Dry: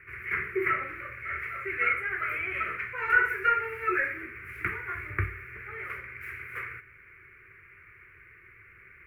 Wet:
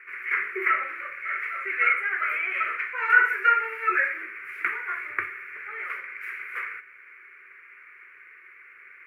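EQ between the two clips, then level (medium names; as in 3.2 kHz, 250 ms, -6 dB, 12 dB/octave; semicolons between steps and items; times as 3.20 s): high-pass 640 Hz 12 dB/octave; treble shelf 11 kHz -11.5 dB; +5.0 dB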